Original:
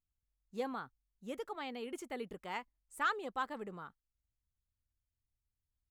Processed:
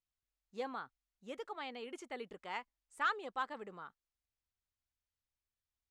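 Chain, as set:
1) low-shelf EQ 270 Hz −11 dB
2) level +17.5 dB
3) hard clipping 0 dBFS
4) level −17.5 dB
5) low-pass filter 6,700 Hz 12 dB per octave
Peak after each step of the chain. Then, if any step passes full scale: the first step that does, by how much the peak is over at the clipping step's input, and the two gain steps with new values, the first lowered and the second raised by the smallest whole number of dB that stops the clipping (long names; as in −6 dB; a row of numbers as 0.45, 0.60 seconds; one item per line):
−22.5, −5.0, −5.0, −22.5, −22.5 dBFS
no step passes full scale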